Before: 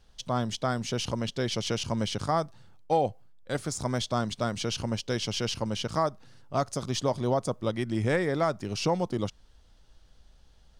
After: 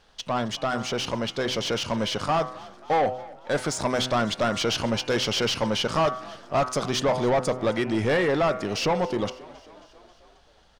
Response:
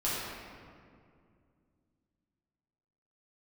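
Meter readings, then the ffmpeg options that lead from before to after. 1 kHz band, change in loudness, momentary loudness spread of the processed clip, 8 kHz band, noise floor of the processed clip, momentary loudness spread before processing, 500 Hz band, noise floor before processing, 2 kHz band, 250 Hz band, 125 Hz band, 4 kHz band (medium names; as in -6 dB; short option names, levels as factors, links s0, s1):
+5.0 dB, +4.5 dB, 6 LU, +3.0 dB, -57 dBFS, 4 LU, +5.0 dB, -58 dBFS, +7.5 dB, +3.0 dB, -0.5 dB, +6.0 dB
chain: -filter_complex "[0:a]bandreject=f=126.8:t=h:w=4,bandreject=f=253.6:t=h:w=4,bandreject=f=380.4:t=h:w=4,bandreject=f=507.2:t=h:w=4,bandreject=f=634:t=h:w=4,bandreject=f=760.8:t=h:w=4,bandreject=f=887.6:t=h:w=4,bandreject=f=1014.4:t=h:w=4,bandreject=f=1141.2:t=h:w=4,bandreject=f=1268:t=h:w=4,bandreject=f=1394.8:t=h:w=4,bandreject=f=1521.6:t=h:w=4,bandreject=f=1648.4:t=h:w=4,bandreject=f=1775.2:t=h:w=4,bandreject=f=1902:t=h:w=4,bandreject=f=2028.8:t=h:w=4,bandreject=f=2155.6:t=h:w=4,bandreject=f=2282.4:t=h:w=4,bandreject=f=2409.2:t=h:w=4,bandreject=f=2536:t=h:w=4,bandreject=f=2662.8:t=h:w=4,bandreject=f=2789.6:t=h:w=4,bandreject=f=2916.4:t=h:w=4,asplit=2[s0][s1];[s1]highpass=f=720:p=1,volume=7.94,asoftclip=type=tanh:threshold=0.188[s2];[s0][s2]amix=inputs=2:normalize=0,lowpass=f=6400:p=1,volume=0.501,dynaudnorm=f=480:g=11:m=1.58,highshelf=f=3200:g=-8,asoftclip=type=tanh:threshold=0.158,asplit=6[s3][s4][s5][s6][s7][s8];[s4]adelay=269,afreqshift=44,volume=0.0891[s9];[s5]adelay=538,afreqshift=88,volume=0.0569[s10];[s6]adelay=807,afreqshift=132,volume=0.0363[s11];[s7]adelay=1076,afreqshift=176,volume=0.0234[s12];[s8]adelay=1345,afreqshift=220,volume=0.015[s13];[s3][s9][s10][s11][s12][s13]amix=inputs=6:normalize=0"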